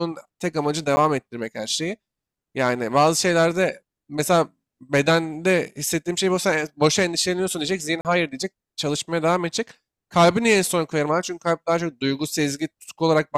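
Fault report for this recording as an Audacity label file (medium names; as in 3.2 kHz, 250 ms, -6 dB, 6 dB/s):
0.960000	0.970000	dropout 10 ms
8.010000	8.050000	dropout 38 ms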